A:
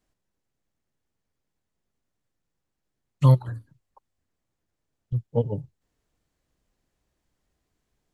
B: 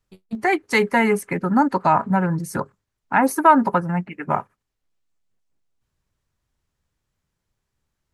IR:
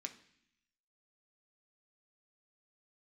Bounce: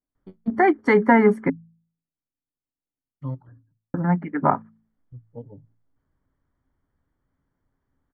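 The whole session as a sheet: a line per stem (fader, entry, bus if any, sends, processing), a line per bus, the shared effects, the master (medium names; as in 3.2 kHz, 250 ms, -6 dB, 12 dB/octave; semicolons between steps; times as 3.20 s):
-15.5 dB, 0.00 s, no send, none
+2.5 dB, 0.15 s, muted 1.50–3.94 s, no send, none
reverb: none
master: Savitzky-Golay filter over 41 samples; peaking EQ 270 Hz +12 dB 0.23 oct; de-hum 55.19 Hz, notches 4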